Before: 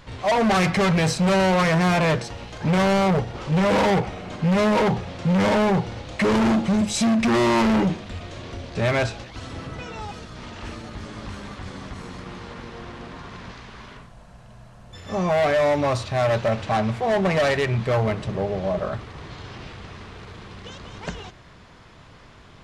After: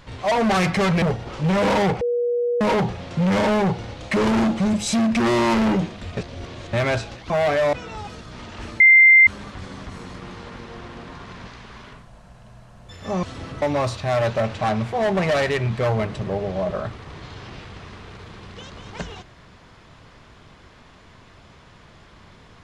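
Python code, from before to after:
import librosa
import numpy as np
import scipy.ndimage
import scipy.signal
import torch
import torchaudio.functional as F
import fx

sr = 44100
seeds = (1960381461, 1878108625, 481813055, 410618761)

y = fx.edit(x, sr, fx.cut(start_s=1.02, length_s=2.08),
    fx.bleep(start_s=4.09, length_s=0.6, hz=481.0, db=-18.5),
    fx.reverse_span(start_s=8.25, length_s=0.56),
    fx.swap(start_s=9.38, length_s=0.39, other_s=15.27, other_length_s=0.43),
    fx.bleep(start_s=10.84, length_s=0.47, hz=2090.0, db=-7.5), tone=tone)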